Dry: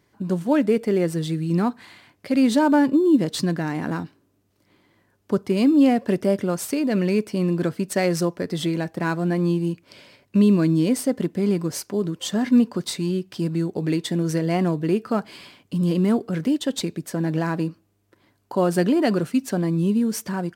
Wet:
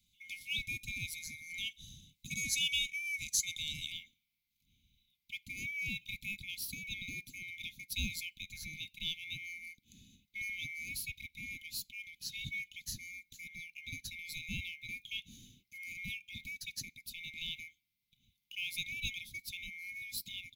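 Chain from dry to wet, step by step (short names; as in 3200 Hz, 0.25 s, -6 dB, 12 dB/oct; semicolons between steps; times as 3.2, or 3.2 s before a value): band-swap scrambler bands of 2000 Hz; Chebyshev band-stop 210–3900 Hz, order 3; bell 7900 Hz -4 dB 1.1 oct, from 2.31 s +2.5 dB, from 3.92 s -14 dB; gain -1.5 dB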